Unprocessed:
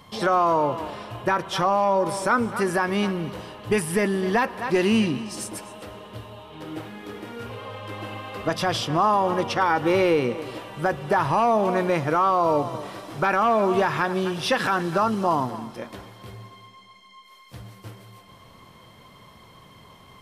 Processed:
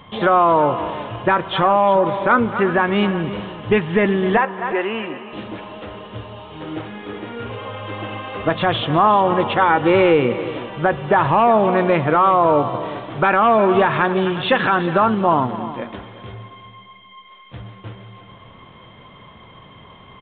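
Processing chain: resampled via 8 kHz; 4.37–5.33 s: three-band isolator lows -21 dB, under 420 Hz, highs -22 dB, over 2.5 kHz; delay 359 ms -15 dB; trim +6 dB

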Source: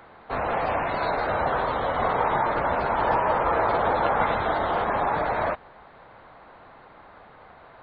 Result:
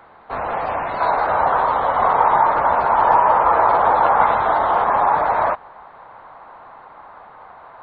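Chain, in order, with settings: peaking EQ 970 Hz +6.5 dB 1.4 oct, from 1.00 s +13 dB; trim -2 dB

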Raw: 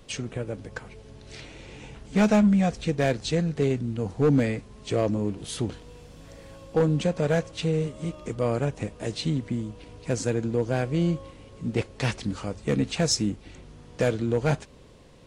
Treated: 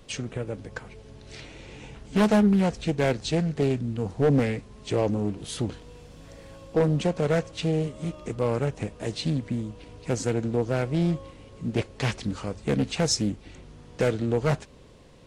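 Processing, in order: loudspeaker Doppler distortion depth 0.45 ms

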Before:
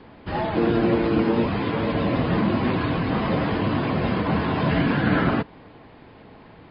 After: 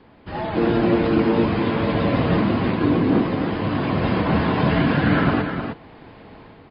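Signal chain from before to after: 2.81–3.23 s: peaking EQ 320 Hz +13 dB 1.6 oct; level rider gain up to 8 dB; delay 309 ms -7 dB; trim -4.5 dB

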